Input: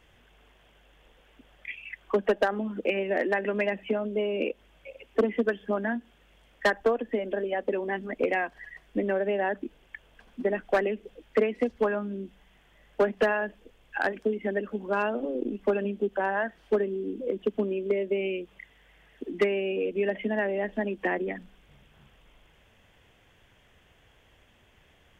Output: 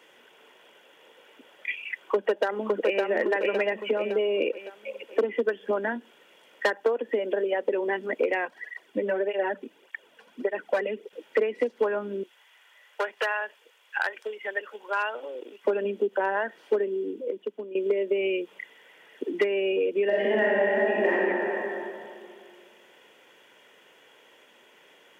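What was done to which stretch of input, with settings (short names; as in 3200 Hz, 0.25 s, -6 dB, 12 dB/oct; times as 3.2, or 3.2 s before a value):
1.93–3.01 echo throw 0.56 s, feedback 40%, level -4.5 dB
8.45–11.13 tape flanging out of phase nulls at 1.7 Hz, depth 3.3 ms
12.23–15.65 HPF 1000 Hz
16.84–17.75 fade out quadratic, to -16 dB
20.05–21.11 reverb throw, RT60 2.2 s, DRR -6.5 dB
whole clip: HPF 240 Hz 24 dB/oct; comb 2.1 ms, depth 36%; compressor 2.5:1, threshold -30 dBFS; gain +6 dB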